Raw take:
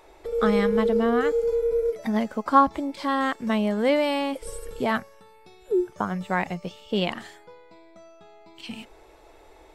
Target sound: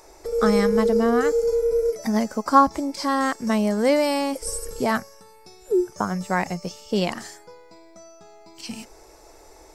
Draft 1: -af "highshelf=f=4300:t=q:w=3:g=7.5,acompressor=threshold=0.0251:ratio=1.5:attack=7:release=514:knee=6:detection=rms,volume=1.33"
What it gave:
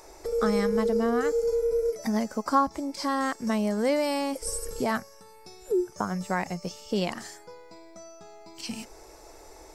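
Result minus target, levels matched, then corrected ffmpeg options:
compression: peak gain reduction +8.5 dB
-af "highshelf=f=4300:t=q:w=3:g=7.5,volume=1.33"

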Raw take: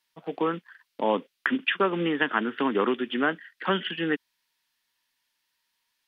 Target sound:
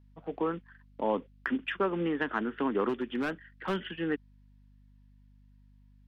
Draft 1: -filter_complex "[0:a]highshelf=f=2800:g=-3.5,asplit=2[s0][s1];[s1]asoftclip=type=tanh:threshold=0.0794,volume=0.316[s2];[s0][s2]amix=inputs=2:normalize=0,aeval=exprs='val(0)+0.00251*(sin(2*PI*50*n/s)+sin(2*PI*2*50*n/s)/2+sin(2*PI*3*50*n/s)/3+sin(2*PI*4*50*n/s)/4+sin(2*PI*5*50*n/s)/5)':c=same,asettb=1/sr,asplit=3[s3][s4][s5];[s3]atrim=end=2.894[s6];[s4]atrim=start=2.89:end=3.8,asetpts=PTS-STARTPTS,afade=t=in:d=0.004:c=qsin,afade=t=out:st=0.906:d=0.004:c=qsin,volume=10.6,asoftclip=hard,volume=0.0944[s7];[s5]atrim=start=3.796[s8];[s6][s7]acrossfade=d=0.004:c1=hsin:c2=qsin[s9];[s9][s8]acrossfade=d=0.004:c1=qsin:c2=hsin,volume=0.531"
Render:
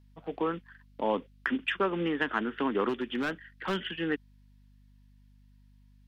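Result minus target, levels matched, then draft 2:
4 kHz band +4.5 dB
-filter_complex "[0:a]highshelf=f=2800:g=-14.5,asplit=2[s0][s1];[s1]asoftclip=type=tanh:threshold=0.0794,volume=0.316[s2];[s0][s2]amix=inputs=2:normalize=0,aeval=exprs='val(0)+0.00251*(sin(2*PI*50*n/s)+sin(2*PI*2*50*n/s)/2+sin(2*PI*3*50*n/s)/3+sin(2*PI*4*50*n/s)/4+sin(2*PI*5*50*n/s)/5)':c=same,asettb=1/sr,asplit=3[s3][s4][s5];[s3]atrim=end=2.894[s6];[s4]atrim=start=2.89:end=3.8,asetpts=PTS-STARTPTS,afade=t=in:d=0.004:c=qsin,afade=t=out:st=0.906:d=0.004:c=qsin,volume=10.6,asoftclip=hard,volume=0.0944[s7];[s5]atrim=start=3.796[s8];[s6][s7]acrossfade=d=0.004:c1=hsin:c2=qsin[s9];[s9][s8]acrossfade=d=0.004:c1=qsin:c2=hsin,volume=0.531"

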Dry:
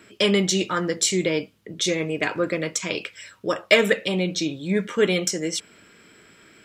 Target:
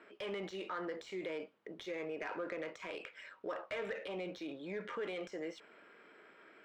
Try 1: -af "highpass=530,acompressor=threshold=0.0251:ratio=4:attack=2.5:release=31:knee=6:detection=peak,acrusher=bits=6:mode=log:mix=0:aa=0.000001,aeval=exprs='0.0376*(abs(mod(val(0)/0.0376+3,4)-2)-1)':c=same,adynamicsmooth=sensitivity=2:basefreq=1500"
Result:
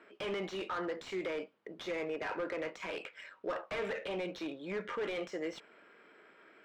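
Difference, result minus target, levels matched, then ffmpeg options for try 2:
compression: peak gain reduction -5 dB
-af "highpass=530,acompressor=threshold=0.0119:ratio=4:attack=2.5:release=31:knee=6:detection=peak,acrusher=bits=6:mode=log:mix=0:aa=0.000001,aeval=exprs='0.0376*(abs(mod(val(0)/0.0376+3,4)-2)-1)':c=same,adynamicsmooth=sensitivity=2:basefreq=1500"

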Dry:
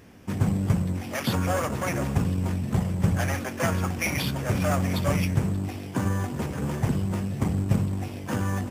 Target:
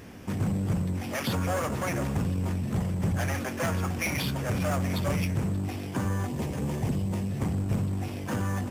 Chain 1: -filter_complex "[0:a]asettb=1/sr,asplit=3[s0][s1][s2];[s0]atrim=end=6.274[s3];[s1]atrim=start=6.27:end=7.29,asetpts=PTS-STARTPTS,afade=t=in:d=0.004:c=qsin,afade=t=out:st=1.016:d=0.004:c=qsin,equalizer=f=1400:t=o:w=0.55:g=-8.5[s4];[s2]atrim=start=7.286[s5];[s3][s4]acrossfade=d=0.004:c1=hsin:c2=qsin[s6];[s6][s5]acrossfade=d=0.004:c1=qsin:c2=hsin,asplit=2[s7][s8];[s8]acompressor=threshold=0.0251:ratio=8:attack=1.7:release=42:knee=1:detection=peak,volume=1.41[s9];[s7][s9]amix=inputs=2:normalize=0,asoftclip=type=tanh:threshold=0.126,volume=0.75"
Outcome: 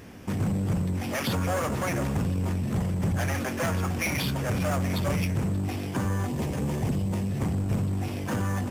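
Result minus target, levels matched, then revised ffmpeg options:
compression: peak gain reduction -8 dB
-filter_complex "[0:a]asettb=1/sr,asplit=3[s0][s1][s2];[s0]atrim=end=6.274[s3];[s1]atrim=start=6.27:end=7.29,asetpts=PTS-STARTPTS,afade=t=in:d=0.004:c=qsin,afade=t=out:st=1.016:d=0.004:c=qsin,equalizer=f=1400:t=o:w=0.55:g=-8.5[s4];[s2]atrim=start=7.286[s5];[s3][s4]acrossfade=d=0.004:c1=hsin:c2=qsin[s6];[s6][s5]acrossfade=d=0.004:c1=qsin:c2=hsin,asplit=2[s7][s8];[s8]acompressor=threshold=0.00891:ratio=8:attack=1.7:release=42:knee=1:detection=peak,volume=1.41[s9];[s7][s9]amix=inputs=2:normalize=0,asoftclip=type=tanh:threshold=0.126,volume=0.75"

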